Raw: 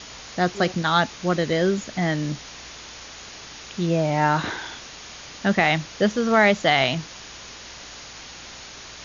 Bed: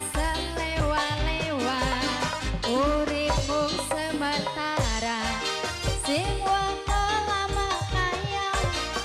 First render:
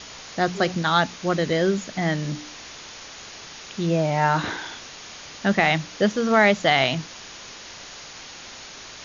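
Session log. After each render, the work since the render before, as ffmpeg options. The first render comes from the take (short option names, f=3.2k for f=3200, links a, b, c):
-af "bandreject=f=60:t=h:w=4,bandreject=f=120:t=h:w=4,bandreject=f=180:t=h:w=4,bandreject=f=240:t=h:w=4,bandreject=f=300:t=h:w=4"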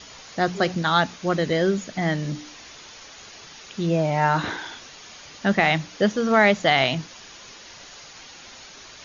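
-af "afftdn=nr=6:nf=-41"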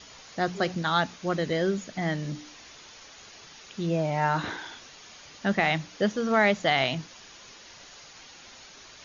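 -af "volume=-5dB"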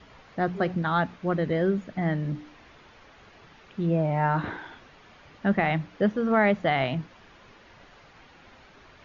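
-af "lowpass=2.1k,lowshelf=f=220:g=6"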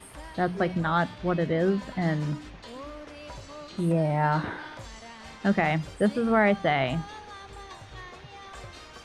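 -filter_complex "[1:a]volume=-17.5dB[a];[0:a][a]amix=inputs=2:normalize=0"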